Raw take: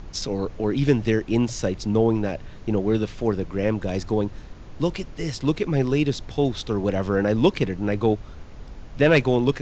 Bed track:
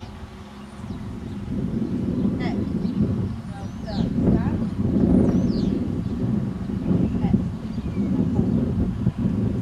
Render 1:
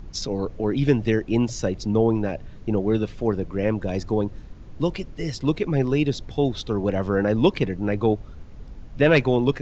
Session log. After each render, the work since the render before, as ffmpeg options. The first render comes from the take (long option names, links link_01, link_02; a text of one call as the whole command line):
ffmpeg -i in.wav -af "afftdn=noise_reduction=7:noise_floor=-41" out.wav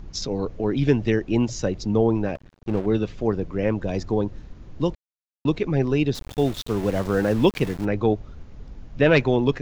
ffmpeg -i in.wav -filter_complex "[0:a]asettb=1/sr,asplit=3[link_01][link_02][link_03];[link_01]atrim=end=2.354[link_04];[link_02]atrim=start=2.35:end=2.86,asetpts=PTS-STARTPTS,afade=type=in:duration=0.004:curve=qsin,afade=type=out:start_time=0.506:duration=0.004:curve=qsin,aeval=exprs='sgn(val(0))*max(abs(val(0))-0.0168,0)':channel_layout=same[link_05];[link_03]atrim=start=2.856[link_06];[link_04][link_05]acrossfade=duration=0.004:curve1=hsin:curve2=qsin[link_07];[link_07][link_06]acrossfade=duration=0.004:curve1=qsin:curve2=hsin,asplit=3[link_08][link_09][link_10];[link_08]afade=type=out:start_time=6.14:duration=0.02[link_11];[link_09]aeval=exprs='val(0)*gte(abs(val(0)),0.0224)':channel_layout=same,afade=type=in:start_time=6.14:duration=0.02,afade=type=out:start_time=7.84:duration=0.02[link_12];[link_10]afade=type=in:start_time=7.84:duration=0.02[link_13];[link_11][link_12][link_13]amix=inputs=3:normalize=0,asplit=3[link_14][link_15][link_16];[link_14]atrim=end=4.95,asetpts=PTS-STARTPTS,afade=type=out:start_time=4.946:duration=0.004:curve=hsin[link_17];[link_15]atrim=start=4.95:end=5.45,asetpts=PTS-STARTPTS,volume=0[link_18];[link_16]atrim=start=5.45,asetpts=PTS-STARTPTS,afade=type=in:duration=0.004:curve=hsin[link_19];[link_17][link_18][link_19]concat=n=3:v=0:a=1" out.wav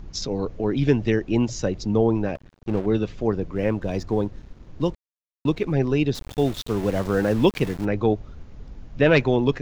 ffmpeg -i in.wav -filter_complex "[0:a]asettb=1/sr,asplit=3[link_01][link_02][link_03];[link_01]atrim=end=3.554[link_04];[link_02]atrim=start=3.55:end=5.73,asetpts=PTS-STARTPTS,afade=type=in:duration=0.004:curve=qsin,afade=type=out:start_time=2.176:duration=0.004:curve=qsin,aeval=exprs='sgn(val(0))*max(abs(val(0))-0.00316,0)':channel_layout=same[link_05];[link_03]atrim=start=5.726[link_06];[link_04][link_05]acrossfade=duration=0.004:curve1=hsin:curve2=qsin[link_07];[link_07][link_06]acrossfade=duration=0.004:curve1=qsin:curve2=hsin" out.wav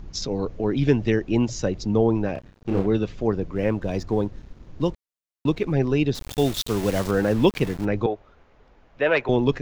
ffmpeg -i in.wav -filter_complex "[0:a]asettb=1/sr,asplit=3[link_01][link_02][link_03];[link_01]atrim=end=2.334[link_04];[link_02]atrim=start=2.33:end=2.87,asetpts=PTS-STARTPTS,afade=type=in:duration=0.004:curve=qsin,afade=type=out:start_time=0.536:duration=0.004:curve=qsin,asplit=2[link_05][link_06];[link_06]adelay=31,volume=-3dB[link_07];[link_05][link_07]amix=inputs=2:normalize=0,atrim=end_sample=23814[link_08];[link_03]atrim=start=2.866[link_09];[link_04][link_08]acrossfade=duration=0.004:curve1=hsin:curve2=qsin[link_10];[link_10][link_09]acrossfade=duration=0.004:curve1=qsin:curve2=hsin,asettb=1/sr,asplit=3[link_11][link_12][link_13];[link_11]atrim=end=6.204[link_14];[link_12]atrim=start=6.2:end=7.11,asetpts=PTS-STARTPTS,afade=type=in:duration=0.004:curve=qsin,afade=type=out:start_time=0.906:duration=0.004:curve=qsin,highshelf=frequency=2800:gain=9.5[link_15];[link_13]atrim=start=7.106[link_16];[link_14][link_15]acrossfade=duration=0.004:curve1=hsin:curve2=qsin[link_17];[link_17][link_16]acrossfade=duration=0.004:curve1=qsin:curve2=hsin,asettb=1/sr,asplit=3[link_18][link_19][link_20];[link_18]atrim=end=8.064[link_21];[link_19]atrim=start=8.06:end=9.29,asetpts=PTS-STARTPTS,afade=type=in:duration=0.004:curve=qsin,afade=type=out:start_time=1.226:duration=0.004:curve=qsin,acrossover=split=420 3100:gain=0.126 1 0.251[link_22][link_23][link_24];[link_22][link_23][link_24]amix=inputs=3:normalize=0[link_25];[link_20]atrim=start=9.286[link_26];[link_21][link_25]acrossfade=duration=0.004:curve1=hsin:curve2=qsin[link_27];[link_27][link_26]acrossfade=duration=0.004:curve1=qsin:curve2=hsin" out.wav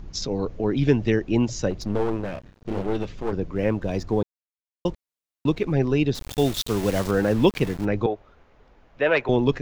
ffmpeg -i in.wav -filter_complex "[0:a]asettb=1/sr,asplit=3[link_01][link_02][link_03];[link_01]atrim=end=1.704[link_04];[link_02]atrim=start=1.7:end=3.33,asetpts=PTS-STARTPTS,afade=type=in:duration=0.004:curve=qsin,afade=type=out:start_time=1.626:duration=0.004:curve=qsin,aeval=exprs='clip(val(0),-1,0.0266)':channel_layout=same[link_05];[link_03]atrim=start=3.326[link_06];[link_04][link_05]acrossfade=duration=0.004:curve1=hsin:curve2=qsin[link_07];[link_07][link_06]acrossfade=duration=0.004:curve1=qsin:curve2=hsin,asplit=3[link_08][link_09][link_10];[link_08]atrim=end=4.23,asetpts=PTS-STARTPTS,afade=type=out:start_time=4.226:duration=0.004:curve=hsin[link_11];[link_09]atrim=start=4.23:end=4.85,asetpts=PTS-STARTPTS,volume=0[link_12];[link_10]atrim=start=4.85,asetpts=PTS-STARTPTS,afade=type=in:duration=0.004:curve=hsin[link_13];[link_11][link_12][link_13]concat=n=3:v=0:a=1" out.wav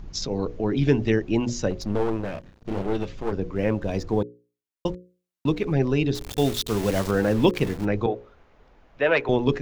ffmpeg -i in.wav -af "bandreject=frequency=60:width_type=h:width=6,bandreject=frequency=120:width_type=h:width=6,bandreject=frequency=180:width_type=h:width=6,bandreject=frequency=240:width_type=h:width=6,bandreject=frequency=300:width_type=h:width=6,bandreject=frequency=360:width_type=h:width=6,bandreject=frequency=420:width_type=h:width=6,bandreject=frequency=480:width_type=h:width=6,bandreject=frequency=540:width_type=h:width=6" out.wav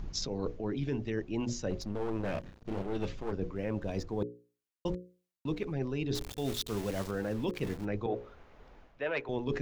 ffmpeg -i in.wav -af "alimiter=limit=-11.5dB:level=0:latency=1:release=253,areverse,acompressor=threshold=-30dB:ratio=10,areverse" out.wav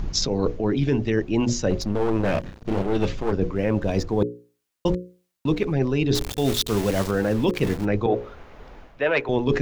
ffmpeg -i in.wav -af "volume=12dB" out.wav